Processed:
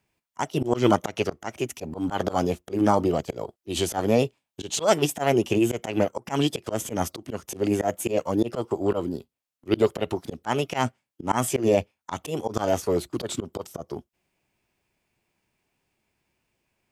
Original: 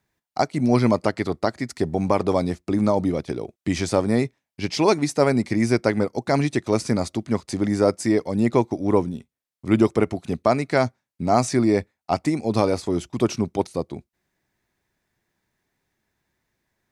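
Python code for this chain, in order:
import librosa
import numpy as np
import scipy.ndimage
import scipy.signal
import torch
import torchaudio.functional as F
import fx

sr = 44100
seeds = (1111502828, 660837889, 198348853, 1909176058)

y = fx.dynamic_eq(x, sr, hz=2700.0, q=2.5, threshold_db=-46.0, ratio=4.0, max_db=6)
y = fx.formant_shift(y, sr, semitones=5)
y = fx.auto_swell(y, sr, attack_ms=123.0)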